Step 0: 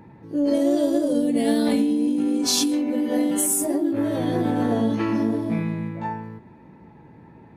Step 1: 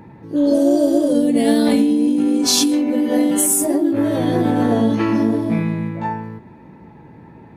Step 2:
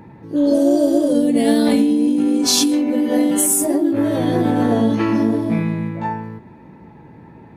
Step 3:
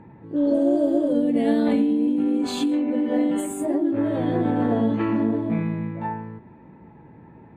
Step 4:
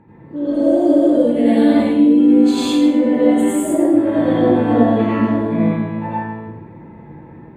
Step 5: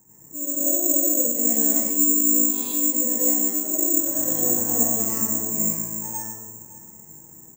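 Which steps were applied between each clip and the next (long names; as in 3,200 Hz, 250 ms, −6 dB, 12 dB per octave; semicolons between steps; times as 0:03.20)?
healed spectral selection 0:00.39–0:01.02, 880–4,300 Hz after; level +5.5 dB
no processing that can be heard
moving average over 8 samples; level −5 dB
automatic gain control gain up to 3.5 dB; convolution reverb RT60 0.80 s, pre-delay 81 ms, DRR −8 dB; level −3.5 dB
single-tap delay 562 ms −17.5 dB; bad sample-rate conversion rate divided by 6×, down filtered, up zero stuff; level −15.5 dB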